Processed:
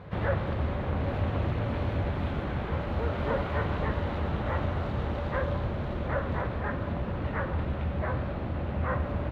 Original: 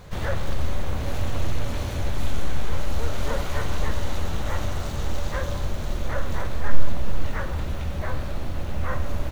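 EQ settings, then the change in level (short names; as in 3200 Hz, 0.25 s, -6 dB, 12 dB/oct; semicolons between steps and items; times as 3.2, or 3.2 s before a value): HPF 82 Hz 12 dB/oct; air absorption 470 m; +2.5 dB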